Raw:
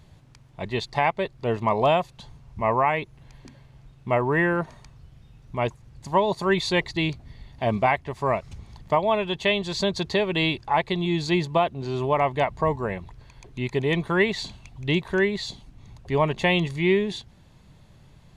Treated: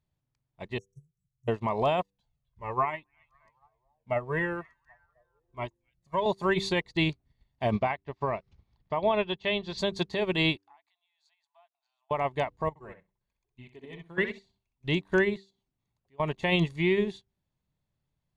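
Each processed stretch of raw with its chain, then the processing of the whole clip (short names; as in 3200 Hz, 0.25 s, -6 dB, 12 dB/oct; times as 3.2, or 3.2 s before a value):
0.78–1.48 brick-wall FIR band-stop 160–5500 Hz + low shelf 90 Hz -9.5 dB + comb 1.8 ms, depth 52%
2.01–6.26 delay with a stepping band-pass 0.261 s, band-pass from 2500 Hz, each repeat -0.7 oct, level -8 dB + cascading flanger falling 1.1 Hz
7.71–9.78 LPF 5300 Hz 24 dB/oct + upward compressor, threshold -37 dBFS
10.57–12.11 compressor, threshold -36 dBFS + brick-wall FIR high-pass 640 Hz
12.69–14.84 flange 1.1 Hz, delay 0.9 ms, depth 5.5 ms, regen -7% + level quantiser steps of 11 dB + tape echo 64 ms, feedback 21%, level -3.5 dB, low-pass 4000 Hz
15.37–16.2 compressor 2.5:1, threshold -43 dBFS + low shelf 97 Hz -11.5 dB
whole clip: de-hum 97.5 Hz, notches 5; limiter -17.5 dBFS; upward expander 2.5:1, over -44 dBFS; gain +2.5 dB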